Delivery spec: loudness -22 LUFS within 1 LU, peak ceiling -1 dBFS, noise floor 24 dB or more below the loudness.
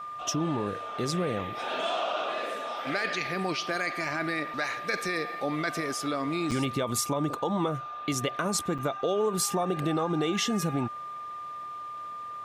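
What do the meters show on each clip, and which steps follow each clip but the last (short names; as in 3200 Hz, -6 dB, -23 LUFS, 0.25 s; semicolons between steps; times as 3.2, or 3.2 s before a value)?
dropouts 2; longest dropout 6.2 ms; steady tone 1200 Hz; tone level -36 dBFS; loudness -30.0 LUFS; peak -15.0 dBFS; loudness target -22.0 LUFS
-> interpolate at 6.51/8.78, 6.2 ms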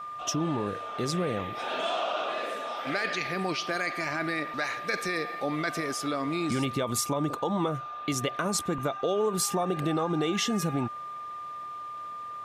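dropouts 0; steady tone 1200 Hz; tone level -36 dBFS
-> notch 1200 Hz, Q 30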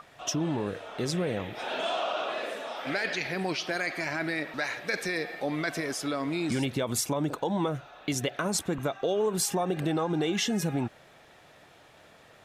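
steady tone none; loudness -30.5 LUFS; peak -14.5 dBFS; loudness target -22.0 LUFS
-> gain +8.5 dB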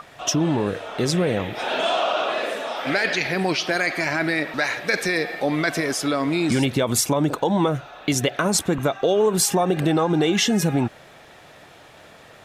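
loudness -22.0 LUFS; peak -6.0 dBFS; noise floor -47 dBFS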